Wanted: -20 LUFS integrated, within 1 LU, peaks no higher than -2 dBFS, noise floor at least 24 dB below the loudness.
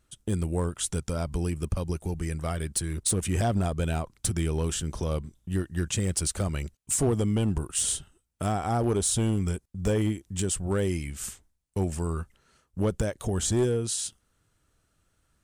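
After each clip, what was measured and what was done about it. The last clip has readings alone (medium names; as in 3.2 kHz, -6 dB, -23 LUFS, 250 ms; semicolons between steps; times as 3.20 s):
clipped samples 0.7%; clipping level -18.5 dBFS; loudness -29.0 LUFS; peak level -18.5 dBFS; loudness target -20.0 LUFS
-> clip repair -18.5 dBFS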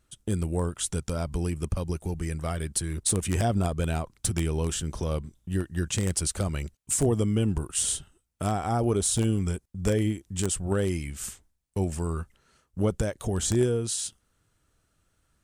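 clipped samples 0.0%; loudness -28.5 LUFS; peak level -9.5 dBFS; loudness target -20.0 LUFS
-> trim +8.5 dB; peak limiter -2 dBFS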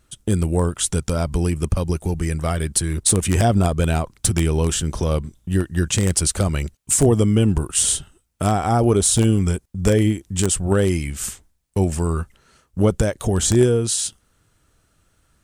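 loudness -20.0 LUFS; peak level -2.0 dBFS; noise floor -64 dBFS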